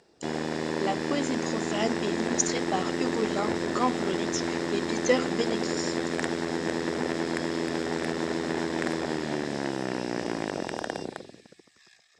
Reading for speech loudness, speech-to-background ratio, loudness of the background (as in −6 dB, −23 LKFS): −31.5 LKFS, −1.0 dB, −30.5 LKFS